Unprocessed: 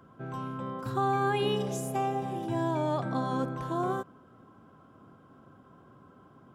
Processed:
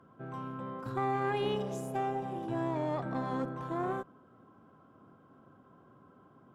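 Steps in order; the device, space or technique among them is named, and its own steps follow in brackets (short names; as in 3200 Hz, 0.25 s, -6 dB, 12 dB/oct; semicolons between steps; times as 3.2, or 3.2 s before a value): tube preamp driven hard (tube stage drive 22 dB, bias 0.55; low shelf 100 Hz -7 dB; high shelf 3200 Hz -9 dB)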